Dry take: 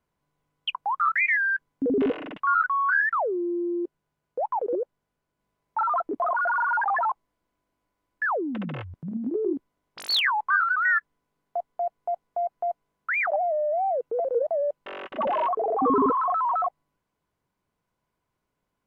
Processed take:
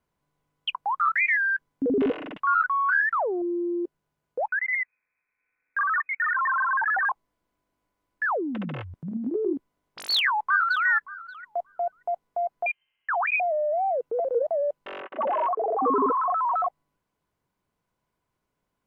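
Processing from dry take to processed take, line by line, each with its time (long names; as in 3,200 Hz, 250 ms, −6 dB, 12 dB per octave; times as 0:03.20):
0:02.52–0:03.42: highs frequency-modulated by the lows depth 0.2 ms
0:04.48–0:07.09: voice inversion scrambler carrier 2,500 Hz
0:10.12–0:10.86: delay throw 580 ms, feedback 10%, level −18 dB
0:12.66–0:13.40: voice inversion scrambler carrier 3,100 Hz
0:15.01–0:16.52: three-way crossover with the lows and the highs turned down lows −16 dB, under 270 Hz, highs −18 dB, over 2,600 Hz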